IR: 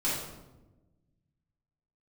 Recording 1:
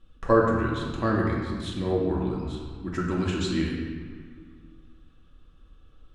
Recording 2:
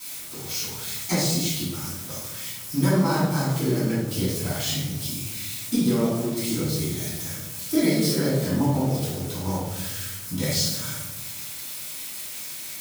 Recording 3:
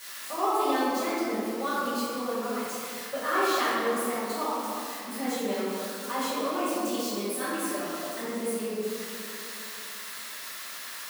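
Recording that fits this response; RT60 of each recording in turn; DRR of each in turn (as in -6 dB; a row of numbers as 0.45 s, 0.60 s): 2; 1.9 s, 1.1 s, 2.8 s; -4.0 dB, -10.5 dB, -13.0 dB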